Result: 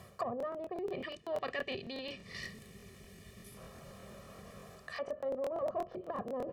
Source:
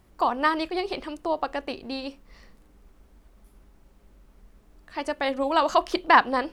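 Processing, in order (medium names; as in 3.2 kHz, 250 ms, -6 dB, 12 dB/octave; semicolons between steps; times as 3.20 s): time-frequency box 0.76–3.57 s, 440–1700 Hz -11 dB; valve stage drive 21 dB, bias 0.45; low-pass that closes with the level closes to 400 Hz, closed at -26 dBFS; peak limiter -27.5 dBFS, peak gain reduction 8.5 dB; reverse; compression 6:1, threshold -47 dBFS, peak gain reduction 14.5 dB; reverse; high-pass 97 Hz 24 dB/octave; comb 1.7 ms, depth 93%; crackling interface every 0.12 s, samples 1024, repeat, from 0.38 s; trim +11.5 dB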